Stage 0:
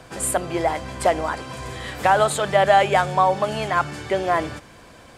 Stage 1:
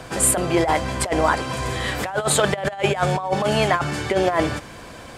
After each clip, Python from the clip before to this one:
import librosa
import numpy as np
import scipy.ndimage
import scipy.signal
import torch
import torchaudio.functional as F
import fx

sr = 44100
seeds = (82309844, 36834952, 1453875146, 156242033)

y = fx.over_compress(x, sr, threshold_db=-22.0, ratio=-0.5)
y = y * librosa.db_to_amplitude(3.5)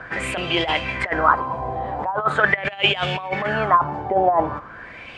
y = fx.high_shelf(x, sr, hz=3400.0, db=10.0)
y = fx.filter_lfo_lowpass(y, sr, shape='sine', hz=0.42, low_hz=770.0, high_hz=3000.0, q=5.9)
y = y * librosa.db_to_amplitude(-5.5)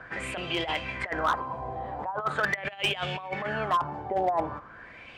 y = np.clip(x, -10.0 ** (-10.5 / 20.0), 10.0 ** (-10.5 / 20.0))
y = y * librosa.db_to_amplitude(-8.5)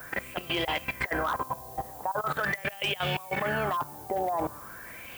y = fx.level_steps(x, sr, step_db=17)
y = fx.dmg_noise_colour(y, sr, seeds[0], colour='violet', level_db=-54.0)
y = y * librosa.db_to_amplitude(5.5)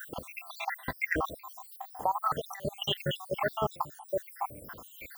y = fx.spec_dropout(x, sr, seeds[1], share_pct=73)
y = y * librosa.db_to_amplitude(3.0)